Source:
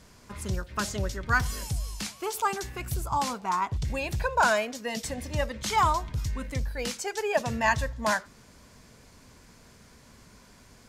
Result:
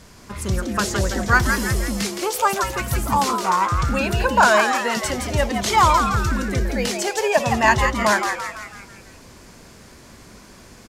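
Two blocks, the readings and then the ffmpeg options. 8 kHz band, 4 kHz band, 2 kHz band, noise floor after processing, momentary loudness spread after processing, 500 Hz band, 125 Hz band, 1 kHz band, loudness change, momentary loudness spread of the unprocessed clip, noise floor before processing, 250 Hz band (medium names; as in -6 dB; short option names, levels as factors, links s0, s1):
+9.5 dB, +9.5 dB, +9.5 dB, -45 dBFS, 9 LU, +9.0 dB, +8.0 dB, +9.5 dB, +9.5 dB, 10 LU, -55 dBFS, +11.5 dB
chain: -filter_complex "[0:a]asplit=7[s0][s1][s2][s3][s4][s5][s6];[s1]adelay=167,afreqshift=150,volume=0.501[s7];[s2]adelay=334,afreqshift=300,volume=0.251[s8];[s3]adelay=501,afreqshift=450,volume=0.126[s9];[s4]adelay=668,afreqshift=600,volume=0.0624[s10];[s5]adelay=835,afreqshift=750,volume=0.0313[s11];[s6]adelay=1002,afreqshift=900,volume=0.0157[s12];[s0][s7][s8][s9][s10][s11][s12]amix=inputs=7:normalize=0,volume=2.51"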